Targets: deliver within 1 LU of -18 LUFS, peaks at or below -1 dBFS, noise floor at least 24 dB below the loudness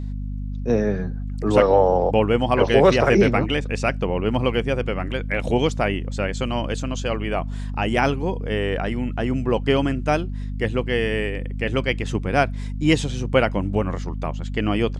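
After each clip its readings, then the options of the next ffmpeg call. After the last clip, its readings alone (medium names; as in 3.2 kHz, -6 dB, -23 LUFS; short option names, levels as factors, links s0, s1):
hum 50 Hz; highest harmonic 250 Hz; hum level -25 dBFS; loudness -22.0 LUFS; peak level -3.5 dBFS; loudness target -18.0 LUFS
-> -af "bandreject=f=50:t=h:w=6,bandreject=f=100:t=h:w=6,bandreject=f=150:t=h:w=6,bandreject=f=200:t=h:w=6,bandreject=f=250:t=h:w=6"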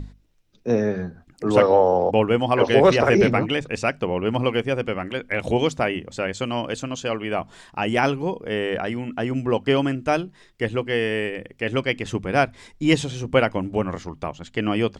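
hum not found; loudness -22.5 LUFS; peak level -3.5 dBFS; loudness target -18.0 LUFS
-> -af "volume=1.68,alimiter=limit=0.891:level=0:latency=1"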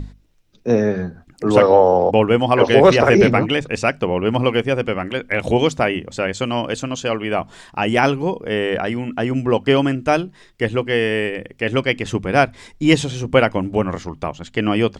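loudness -18.0 LUFS; peak level -1.0 dBFS; noise floor -50 dBFS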